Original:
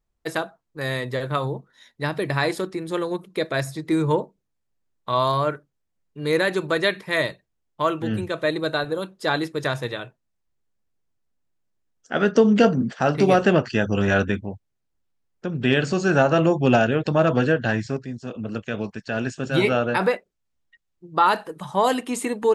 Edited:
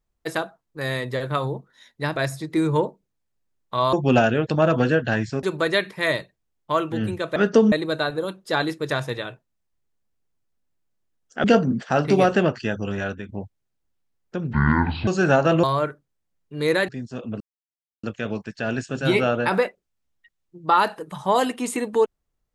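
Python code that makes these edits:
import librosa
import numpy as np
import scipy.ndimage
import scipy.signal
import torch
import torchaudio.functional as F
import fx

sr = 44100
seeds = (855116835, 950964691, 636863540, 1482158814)

y = fx.edit(x, sr, fx.cut(start_s=2.16, length_s=1.35),
    fx.swap(start_s=5.28, length_s=1.25, other_s=16.5, other_length_s=1.5),
    fx.move(start_s=12.18, length_s=0.36, to_s=8.46),
    fx.fade_out_to(start_s=13.23, length_s=1.16, floor_db=-13.0),
    fx.speed_span(start_s=15.63, length_s=0.31, speed=0.57),
    fx.insert_silence(at_s=18.52, length_s=0.63), tone=tone)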